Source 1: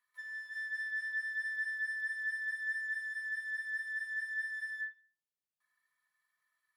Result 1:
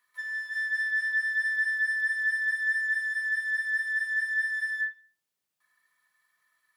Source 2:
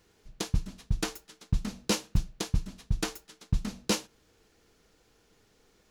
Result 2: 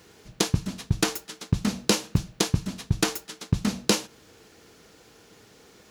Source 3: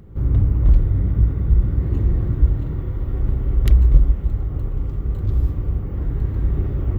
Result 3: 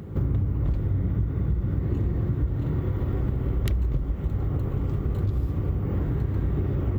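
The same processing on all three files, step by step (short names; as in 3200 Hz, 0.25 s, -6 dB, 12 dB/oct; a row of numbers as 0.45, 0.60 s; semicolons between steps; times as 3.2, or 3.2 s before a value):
HPF 87 Hz 12 dB/oct; compressor 6:1, threshold -30 dBFS; match loudness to -27 LUFS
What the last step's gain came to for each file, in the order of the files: +9.5, +12.5, +8.0 dB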